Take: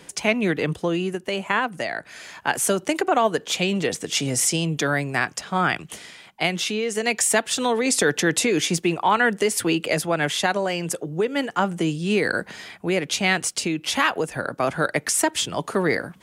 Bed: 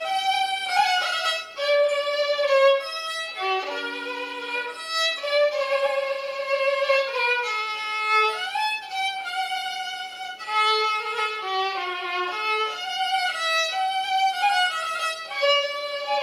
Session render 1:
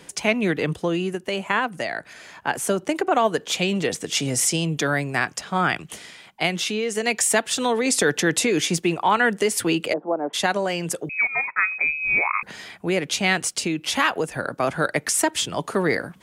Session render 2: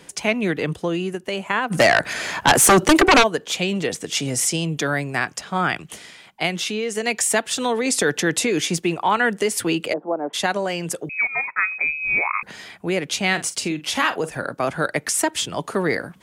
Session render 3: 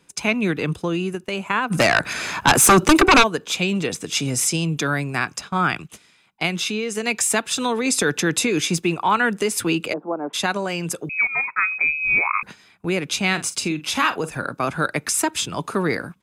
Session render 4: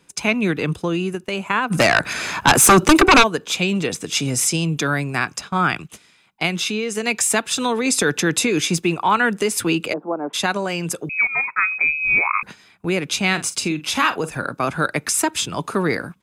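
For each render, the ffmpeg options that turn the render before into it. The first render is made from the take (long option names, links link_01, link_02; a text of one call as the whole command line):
ffmpeg -i in.wav -filter_complex "[0:a]asettb=1/sr,asplit=3[link_01][link_02][link_03];[link_01]atrim=end=2.134[link_04];[link_02]atrim=start=2.13:end=3.11,asetpts=PTS-STARTPTS,afade=type=in:duration=0.004:curve=qsin,afade=type=out:start_time=0.976:duration=0.004:curve=qsin,highshelf=frequency=2000:gain=-5.5[link_05];[link_03]atrim=start=3.106[link_06];[link_04][link_05]acrossfade=duration=0.004:curve1=hsin:curve2=qsin[link_07];[link_07][link_06]acrossfade=duration=0.004:curve1=qsin:curve2=hsin,asplit=3[link_08][link_09][link_10];[link_08]afade=type=out:start_time=9.92:duration=0.02[link_11];[link_09]asuperpass=centerf=490:order=8:qfactor=0.61,afade=type=in:start_time=9.92:duration=0.02,afade=type=out:start_time=10.33:duration=0.02[link_12];[link_10]afade=type=in:start_time=10.33:duration=0.02[link_13];[link_11][link_12][link_13]amix=inputs=3:normalize=0,asettb=1/sr,asplit=3[link_14][link_15][link_16];[link_14]atrim=end=11.094[link_17];[link_15]atrim=start=11.09:end=12.43,asetpts=PTS-STARTPTS,afade=type=in:duration=0.004:curve=qsin,afade=type=out:start_time=1.336:duration=0.004:curve=qsin,lowpass=frequency=2300:width_type=q:width=0.5098,lowpass=frequency=2300:width_type=q:width=0.6013,lowpass=frequency=2300:width_type=q:width=0.9,lowpass=frequency=2300:width_type=q:width=2.563,afreqshift=-2700[link_18];[link_16]atrim=start=12.426[link_19];[link_17][link_18]acrossfade=duration=0.004:curve1=hsin:curve2=qsin[link_20];[link_20][link_19]acrossfade=duration=0.004:curve1=qsin:curve2=hsin" out.wav
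ffmpeg -i in.wav -filter_complex "[0:a]asplit=3[link_01][link_02][link_03];[link_01]afade=type=out:start_time=1.7:duration=0.02[link_04];[link_02]aeval=exprs='0.398*sin(PI/2*3.98*val(0)/0.398)':channel_layout=same,afade=type=in:start_time=1.7:duration=0.02,afade=type=out:start_time=3.22:duration=0.02[link_05];[link_03]afade=type=in:start_time=3.22:duration=0.02[link_06];[link_04][link_05][link_06]amix=inputs=3:normalize=0,asettb=1/sr,asplit=3[link_07][link_08][link_09];[link_07]atrim=end=13.294[link_10];[link_08]atrim=start=13.29:end=14.53,asetpts=PTS-STARTPTS,afade=type=in:duration=0.004:curve=qsin,afade=type=out:start_time=1.236:duration=0.004:curve=qsin,asplit=2[link_11][link_12];[link_12]adelay=46,volume=-13dB[link_13];[link_11][link_13]amix=inputs=2:normalize=0,atrim=end_sample=54684[link_14];[link_09]atrim=start=14.526[link_15];[link_10][link_14]acrossfade=duration=0.004:curve1=hsin:curve2=qsin[link_16];[link_16][link_15]acrossfade=duration=0.004:curve1=qsin:curve2=hsin" out.wav
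ffmpeg -i in.wav -af "agate=range=-13dB:threshold=-35dB:ratio=16:detection=peak,aecho=1:1:0.8:0.36" out.wav
ffmpeg -i in.wav -af "volume=1.5dB" out.wav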